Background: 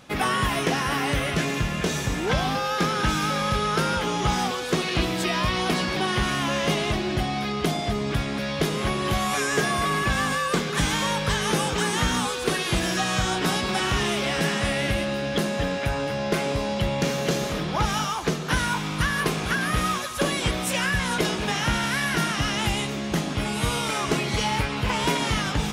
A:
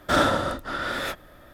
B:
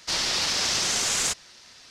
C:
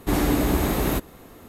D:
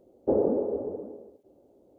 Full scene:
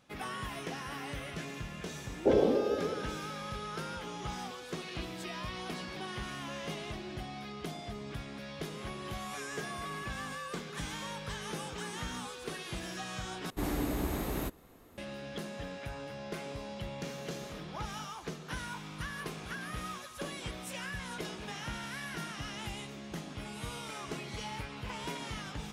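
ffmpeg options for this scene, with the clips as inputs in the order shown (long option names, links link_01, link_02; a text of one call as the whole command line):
ffmpeg -i bed.wav -i cue0.wav -i cue1.wav -i cue2.wav -i cue3.wav -filter_complex "[0:a]volume=-16dB,asplit=2[link_01][link_02];[link_01]atrim=end=13.504[link_03];[3:a]atrim=end=1.48,asetpts=PTS-STARTPTS,volume=-12dB[link_04];[link_02]atrim=start=14.976[link_05];[4:a]atrim=end=1.98,asetpts=PTS-STARTPTS,volume=-1.5dB,afade=type=in:duration=0.004:curve=hsin,afade=type=out:start_time=1.976:duration=0.004:curve=hsin,adelay=1980[link_06];[link_03][link_04]acrossfade=duration=0.004:curve1=hsin:curve2=hsin[link_07];[link_07][link_05]acrossfade=duration=0.004:curve1=hsin:curve2=hsin[link_08];[link_08][link_06]amix=inputs=2:normalize=0" out.wav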